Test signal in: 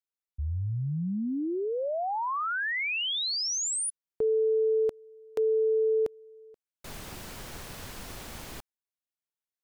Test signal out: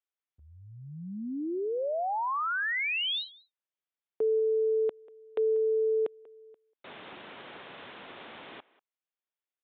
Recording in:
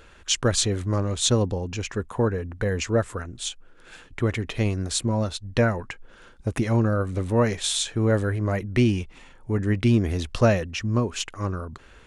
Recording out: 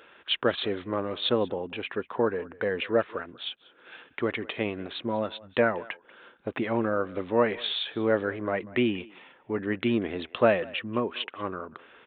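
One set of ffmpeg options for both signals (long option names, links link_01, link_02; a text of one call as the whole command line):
ffmpeg -i in.wav -filter_complex "[0:a]highpass=300,asplit=2[link_01][link_02];[link_02]adelay=190,highpass=300,lowpass=3400,asoftclip=type=hard:threshold=-17.5dB,volume=-20dB[link_03];[link_01][link_03]amix=inputs=2:normalize=0,aresample=8000,aresample=44100" out.wav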